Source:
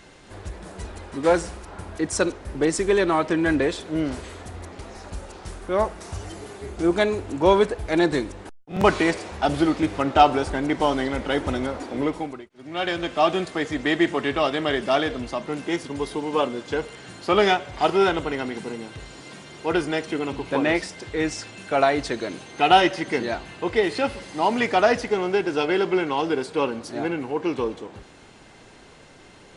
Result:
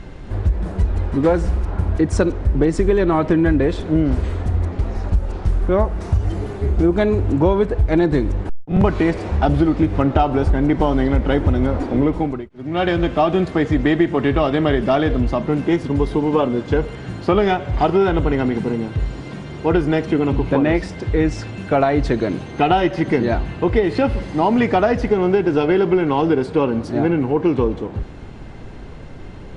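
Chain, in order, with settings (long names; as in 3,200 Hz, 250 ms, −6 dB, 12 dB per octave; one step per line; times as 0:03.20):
RIAA equalisation playback
downward compressor, threshold −18 dBFS, peak gain reduction 11 dB
level +6 dB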